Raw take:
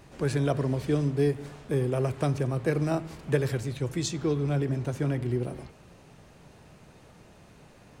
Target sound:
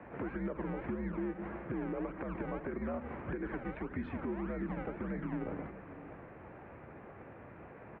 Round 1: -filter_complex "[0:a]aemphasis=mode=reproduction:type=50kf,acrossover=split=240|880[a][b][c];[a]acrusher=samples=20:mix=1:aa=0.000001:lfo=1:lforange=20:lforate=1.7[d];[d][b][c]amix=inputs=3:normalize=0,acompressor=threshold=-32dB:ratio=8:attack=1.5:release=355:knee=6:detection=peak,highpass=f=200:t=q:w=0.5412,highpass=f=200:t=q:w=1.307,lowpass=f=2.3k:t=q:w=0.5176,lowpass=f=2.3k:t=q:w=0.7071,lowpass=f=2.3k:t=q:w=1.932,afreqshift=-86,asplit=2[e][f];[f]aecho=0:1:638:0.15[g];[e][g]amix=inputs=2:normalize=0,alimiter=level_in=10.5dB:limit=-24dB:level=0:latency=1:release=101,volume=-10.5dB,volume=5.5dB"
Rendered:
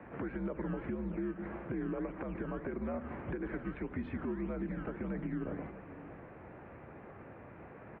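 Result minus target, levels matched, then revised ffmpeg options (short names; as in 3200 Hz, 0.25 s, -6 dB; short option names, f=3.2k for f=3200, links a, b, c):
decimation with a swept rate: distortion -7 dB
-filter_complex "[0:a]aemphasis=mode=reproduction:type=50kf,acrossover=split=240|880[a][b][c];[a]acrusher=samples=41:mix=1:aa=0.000001:lfo=1:lforange=41:lforate=1.7[d];[d][b][c]amix=inputs=3:normalize=0,acompressor=threshold=-32dB:ratio=8:attack=1.5:release=355:knee=6:detection=peak,highpass=f=200:t=q:w=0.5412,highpass=f=200:t=q:w=1.307,lowpass=f=2.3k:t=q:w=0.5176,lowpass=f=2.3k:t=q:w=0.7071,lowpass=f=2.3k:t=q:w=1.932,afreqshift=-86,asplit=2[e][f];[f]aecho=0:1:638:0.15[g];[e][g]amix=inputs=2:normalize=0,alimiter=level_in=10.5dB:limit=-24dB:level=0:latency=1:release=101,volume=-10.5dB,volume=5.5dB"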